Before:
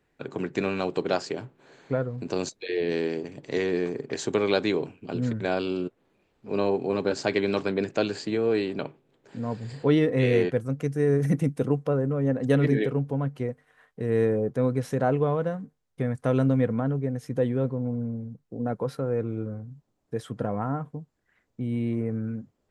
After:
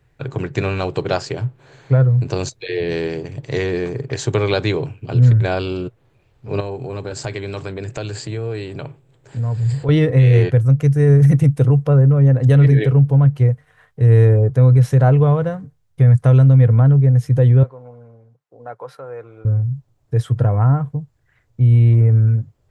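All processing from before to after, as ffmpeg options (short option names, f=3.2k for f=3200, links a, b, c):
-filter_complex "[0:a]asettb=1/sr,asplit=3[a][b][c];[a]atrim=end=6.604[d];[b]atrim=start=6.6:end=9.89,asetpts=PTS-STARTPTS,afade=t=in:d=0.004:c=qsin,afade=t=out:st=3.286:d=0.004:c=qsin,equalizer=f=7.8k:t=o:w=0.3:g=9.5,acompressor=threshold=-35dB:ratio=2:attack=3.2:release=140:knee=1:detection=peak[e];[c]atrim=start=9.886[f];[d][e]acrossfade=d=0.004:c1=hsin:c2=qsin[g];[g][f]acrossfade=d=0.004:c1=qsin:c2=hsin,asettb=1/sr,asplit=3[h][i][j];[h]atrim=end=17.634[k];[i]atrim=start=17.63:end=19.45,asetpts=PTS-STARTPTS,afade=t=in:d=0.004:c=qsin,afade=t=out:st=1.816:d=0.004:c=qsin,highpass=780,highshelf=f=2.1k:g=-11[l];[j]atrim=start=19.446[m];[k][l]acrossfade=d=0.004:c1=hsin:c2=qsin[n];[n][m]acrossfade=d=0.004:c1=qsin:c2=hsin,lowshelf=f=160:t=q:w=3:g=9,alimiter=level_in=10.5dB:limit=-1dB:release=50:level=0:latency=1,volume=-4dB"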